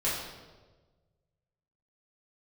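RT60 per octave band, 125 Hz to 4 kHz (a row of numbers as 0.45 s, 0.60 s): 2.0 s, 1.4 s, 1.5 s, 1.1 s, 1.0 s, 0.95 s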